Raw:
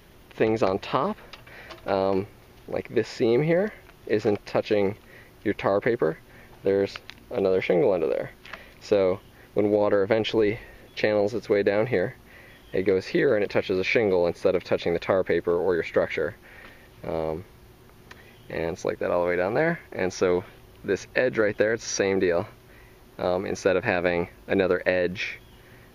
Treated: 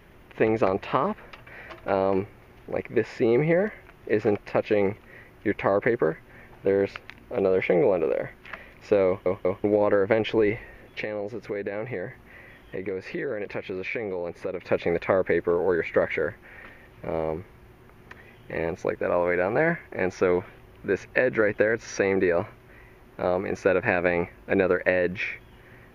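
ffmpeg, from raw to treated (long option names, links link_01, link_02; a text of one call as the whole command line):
ffmpeg -i in.wav -filter_complex "[0:a]asettb=1/sr,asplit=3[link_01][link_02][link_03];[link_01]atrim=end=11.014[link_04];[link_02]atrim=start=11.01:end=14.63,asetpts=PTS-STARTPTS,afade=type=in:duration=0.004:curve=qsin,afade=type=out:start_time=3.616:duration=0.004:curve=qsin,acompressor=threshold=-34dB:ratio=2:attack=3.2:release=140:knee=1:detection=peak[link_05];[link_03]atrim=start=14.626[link_06];[link_04][link_05]acrossfade=duration=0.004:curve1=hsin:curve2=qsin[link_07];[link_07][link_06]acrossfade=duration=0.004:curve1=qsin:curve2=hsin,asplit=4[link_08][link_09][link_10][link_11];[link_08]atrim=end=9.262[link_12];[link_09]atrim=start=9.068:end=9.262[link_13];[link_10]atrim=start=9.068:end=9.262[link_14];[link_11]atrim=start=9.638[link_15];[link_12][link_13]acrossfade=duration=0.004:curve1=hsin:curve2=hsin[link_16];[link_16][link_14]acrossfade=duration=0.004:curve1=hsin:curve2=hsin[link_17];[link_17][link_15]acrossfade=duration=0.004:curve1=hsin:curve2=hsin,highshelf=frequency=3000:width_type=q:width=1.5:gain=-7.5" out.wav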